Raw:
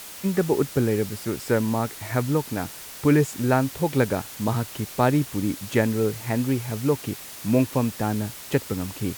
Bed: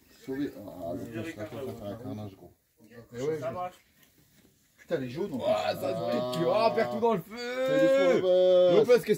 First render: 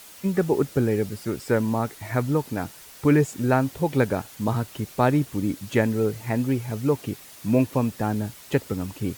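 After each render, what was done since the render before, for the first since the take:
broadband denoise 7 dB, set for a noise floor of −40 dBFS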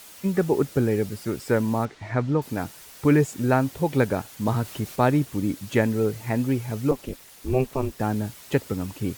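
0:01.85–0:02.42: high-frequency loss of the air 130 metres
0:04.45–0:04.96: mu-law and A-law mismatch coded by mu
0:06.91–0:08.00: ring modulation 130 Hz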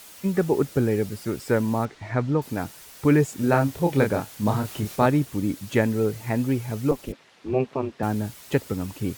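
0:03.36–0:05.06: double-tracking delay 29 ms −5 dB
0:07.12–0:08.03: band-pass filter 140–3,400 Hz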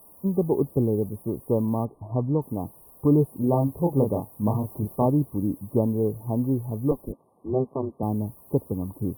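parametric band 4,100 Hz −14.5 dB 2.9 octaves
brick-wall band-stop 1,200–8,900 Hz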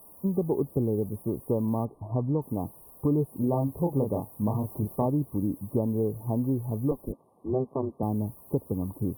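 downward compressor 2.5 to 1, threshold −24 dBFS, peak gain reduction 6.5 dB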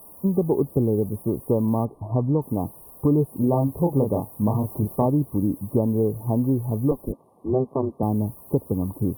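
level +5.5 dB

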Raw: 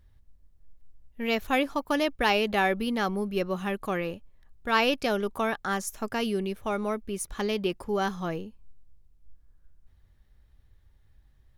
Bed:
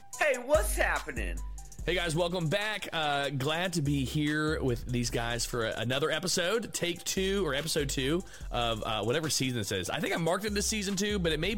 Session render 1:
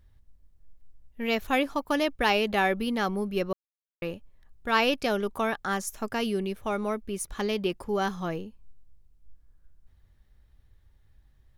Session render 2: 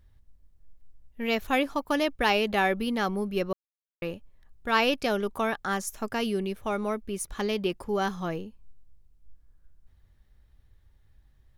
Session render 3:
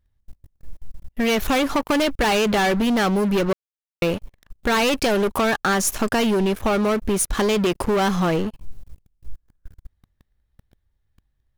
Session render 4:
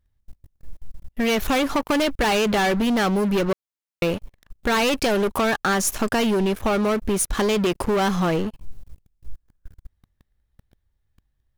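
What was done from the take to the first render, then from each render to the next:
0:03.53–0:04.02: silence
no processing that can be heard
leveller curve on the samples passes 5; downward compressor, threshold −18 dBFS, peak gain reduction 5 dB
level −1 dB

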